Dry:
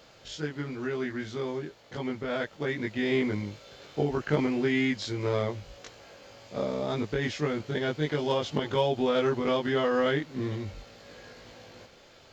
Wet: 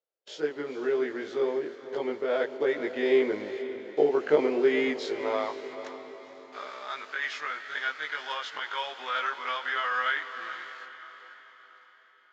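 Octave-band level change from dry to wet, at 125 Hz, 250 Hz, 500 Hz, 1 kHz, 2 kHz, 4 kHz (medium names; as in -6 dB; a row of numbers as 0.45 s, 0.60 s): under -20 dB, -5.0 dB, +1.5 dB, +2.5 dB, +3.5 dB, -0.5 dB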